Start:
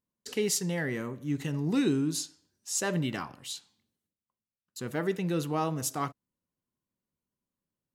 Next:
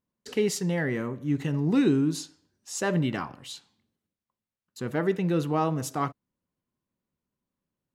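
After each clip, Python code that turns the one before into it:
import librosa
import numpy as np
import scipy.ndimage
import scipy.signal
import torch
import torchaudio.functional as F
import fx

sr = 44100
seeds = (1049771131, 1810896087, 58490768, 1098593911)

y = fx.high_shelf(x, sr, hz=3900.0, db=-11.0)
y = F.gain(torch.from_numpy(y), 4.5).numpy()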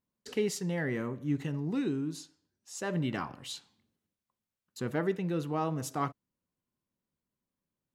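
y = fx.rider(x, sr, range_db=5, speed_s=0.5)
y = F.gain(torch.from_numpy(y), -5.5).numpy()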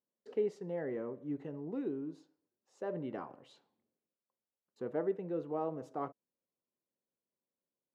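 y = fx.bandpass_q(x, sr, hz=510.0, q=1.6)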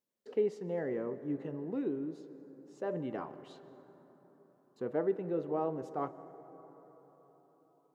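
y = fx.rev_plate(x, sr, seeds[0], rt60_s=4.5, hf_ratio=0.35, predelay_ms=120, drr_db=14.0)
y = F.gain(torch.from_numpy(y), 2.5).numpy()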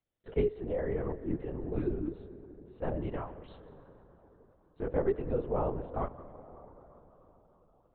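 y = fx.lpc_vocoder(x, sr, seeds[1], excitation='whisper', order=10)
y = F.gain(torch.from_numpy(y), 2.5).numpy()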